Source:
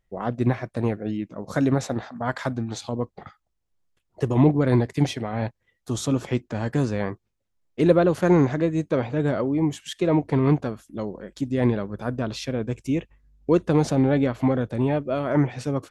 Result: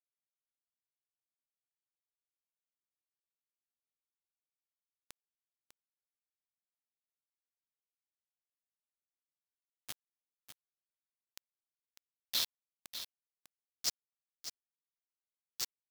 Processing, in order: inverse Chebyshev band-stop 350–2100 Hz, stop band 40 dB; compressor 2:1, threshold -28 dBFS, peak gain reduction 6 dB; limiter -28 dBFS, peak gain reduction 9 dB; band-pass sweep 1900 Hz -> 5000 Hz, 11.12–13.4; bit-crush 7-bit; echo 0.599 s -10.5 dB; gain +11 dB

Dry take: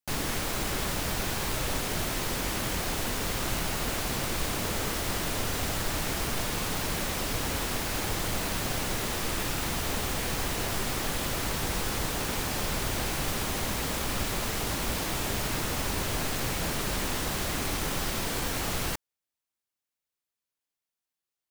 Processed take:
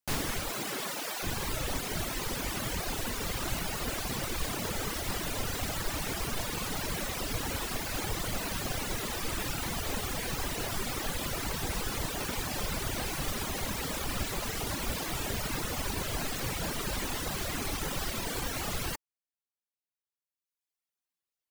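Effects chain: 0.51–1.22 HPF 110 Hz -> 420 Hz 12 dB/oct; reverb removal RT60 1.6 s

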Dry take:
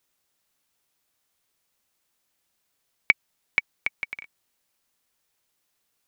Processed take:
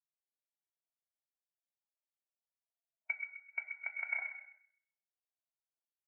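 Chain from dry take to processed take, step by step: Wiener smoothing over 25 samples; HPF 250 Hz; low shelf 410 Hz +8.5 dB; harmonic-percussive split percussive -14 dB; band shelf 950 Hz +13.5 dB; limiter -27.5 dBFS, peak gain reduction 17.5 dB; notch comb 1200 Hz; on a send: narrowing echo 0.129 s, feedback 59%, band-pass 1900 Hz, level -5 dB; on the sum: non-linear reverb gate 0.46 s falling, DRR 1.5 dB; spectral expander 2.5:1; gain +8 dB

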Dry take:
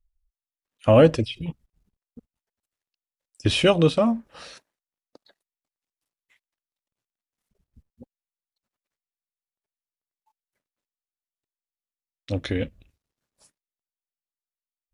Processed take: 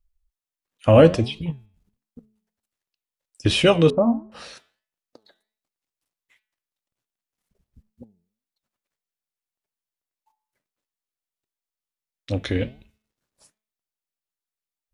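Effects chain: de-hum 216.2 Hz, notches 18; flange 1.4 Hz, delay 4.8 ms, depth 7.2 ms, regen +86%; 3.9–4.32 Chebyshev low-pass 960 Hz, order 3; gain +6.5 dB

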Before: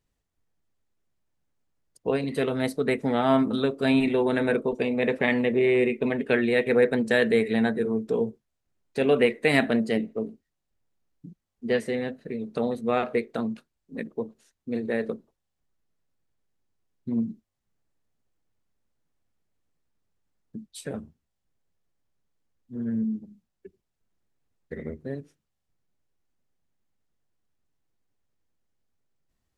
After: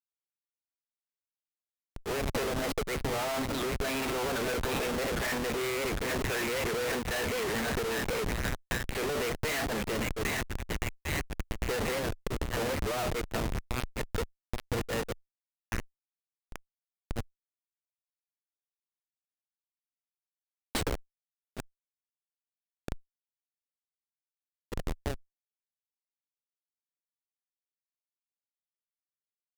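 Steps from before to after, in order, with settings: G.711 law mismatch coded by mu; HPF 670 Hz 12 dB/oct; thin delay 0.801 s, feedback 64%, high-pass 2000 Hz, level -5 dB; Schmitt trigger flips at -35.5 dBFS; added harmonics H 2 -9 dB, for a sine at -28.5 dBFS; record warp 78 rpm, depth 160 cents; gain +3.5 dB

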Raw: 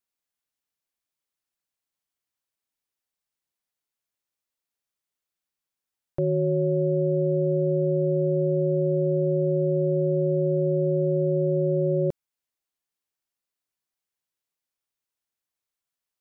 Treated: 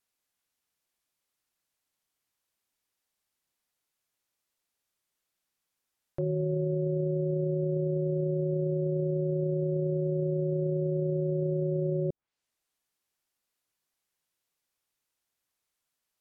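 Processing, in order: treble ducked by the level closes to 490 Hz, closed at -22 dBFS; limiter -27.5 dBFS, peak gain reduction 12 dB; gain +5 dB

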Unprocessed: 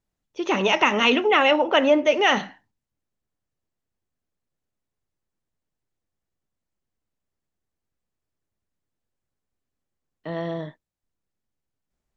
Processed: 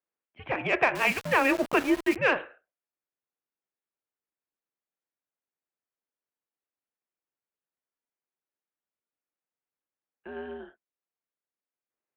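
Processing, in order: mistuned SSB -260 Hz 560–3000 Hz; 0.95–2.16 sample gate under -28 dBFS; added harmonics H 3 -26 dB, 7 -36 dB, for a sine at -6 dBFS; gain -2.5 dB

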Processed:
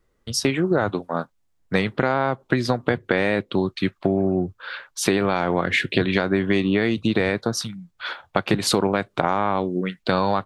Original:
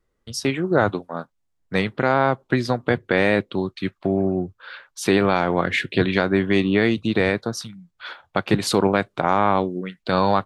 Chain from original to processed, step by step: compressor, threshold -21 dBFS, peak gain reduction 9.5 dB; gain +5 dB

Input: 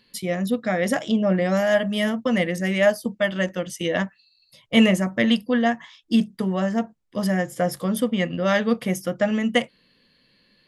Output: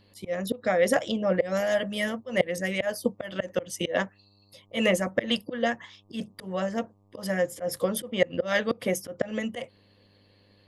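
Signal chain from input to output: bell 520 Hz +12.5 dB 0.28 oct; auto swell 0.148 s; buzz 100 Hz, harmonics 12, -55 dBFS -7 dB/oct; harmonic-percussive split harmonic -9 dB

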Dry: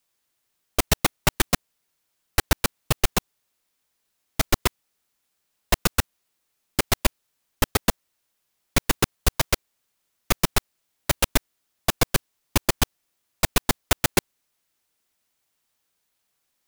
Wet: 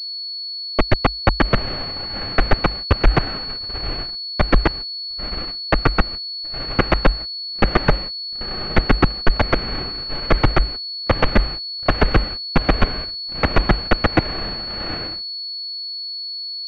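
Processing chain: notch 1000 Hz, Q 5.4; on a send: diffused feedback echo 0.85 s, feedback 43%, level -12.5 dB; on the sum: frequency shift -52 Hz; gate -36 dBFS, range -49 dB; overloaded stage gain 15 dB; AGC gain up to 11 dB; pulse-width modulation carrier 4400 Hz

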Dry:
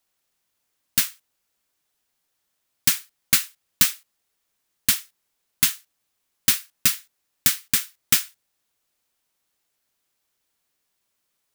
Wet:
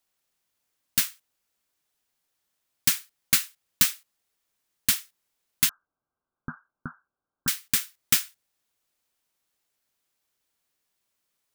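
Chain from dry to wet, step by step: 5.69–7.48 Chebyshev low-pass 1600 Hz, order 10; gain -3 dB

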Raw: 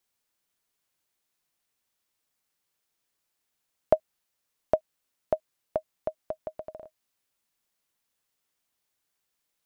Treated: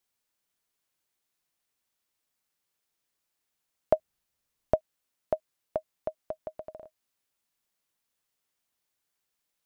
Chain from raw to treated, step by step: 3.96–4.76 low shelf 180 Hz +11 dB; gain -2 dB

